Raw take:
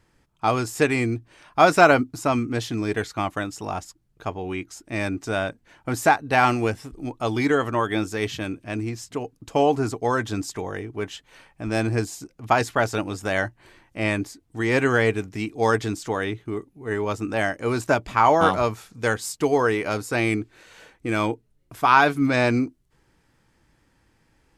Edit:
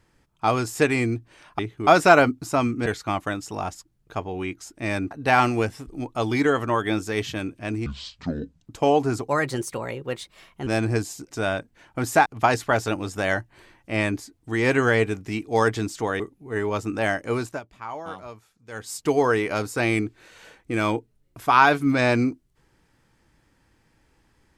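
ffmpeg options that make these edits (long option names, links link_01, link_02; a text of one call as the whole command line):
ffmpeg -i in.wav -filter_complex "[0:a]asplit=14[link_01][link_02][link_03][link_04][link_05][link_06][link_07][link_08][link_09][link_10][link_11][link_12][link_13][link_14];[link_01]atrim=end=1.592[link_15];[link_02]atrim=start=16.268:end=16.552[link_16];[link_03]atrim=start=1.588:end=2.582[link_17];[link_04]atrim=start=2.958:end=5.212[link_18];[link_05]atrim=start=6.158:end=8.914[link_19];[link_06]atrim=start=8.91:end=9.39,asetpts=PTS-STARTPTS,asetrate=26460,aresample=44100[link_20];[link_07]atrim=start=9.386:end=10.014[link_21];[link_08]atrim=start=10.01:end=11.69,asetpts=PTS-STARTPTS,asetrate=53361,aresample=44100[link_22];[link_09]atrim=start=11.686:end=12.332[link_23];[link_10]atrim=start=5.208:end=6.162[link_24];[link_11]atrim=start=12.328:end=16.272[link_25];[link_12]atrim=start=16.548:end=17.96,asetpts=PTS-STARTPTS,afade=type=out:start_time=1.102:duration=0.31:silence=0.133352[link_26];[link_13]atrim=start=17.96:end=19.07,asetpts=PTS-STARTPTS,volume=-17.5dB[link_27];[link_14]atrim=start=19.07,asetpts=PTS-STARTPTS,afade=type=in:duration=0.31:silence=0.133352[link_28];[link_15][link_16]acrossfade=duration=0.004:curve1=hsin:curve2=hsin[link_29];[link_29][link_17]acrossfade=duration=0.004:curve1=hsin:curve2=hsin[link_30];[link_30][link_18]acrossfade=duration=0.004:curve1=hsin:curve2=hsin[link_31];[link_31][link_19]acrossfade=duration=0.004:curve1=hsin:curve2=hsin[link_32];[link_32][link_20]acrossfade=duration=0.004:curve1=hsin:curve2=hsin[link_33];[link_33][link_21]acrossfade=duration=0.004:curve1=hsin:curve2=hsin[link_34];[link_34][link_22]acrossfade=duration=0.004:curve1=hsin:curve2=hsin[link_35];[link_35][link_23]acrossfade=duration=0.004:curve1=hsin:curve2=hsin[link_36];[link_36][link_24]acrossfade=duration=0.004:curve1=hsin:curve2=hsin[link_37];[link_37][link_25]acrossfade=duration=0.004:curve1=hsin:curve2=hsin[link_38];[link_26][link_27][link_28]concat=n=3:v=0:a=1[link_39];[link_38][link_39]acrossfade=duration=0.004:curve1=hsin:curve2=hsin" out.wav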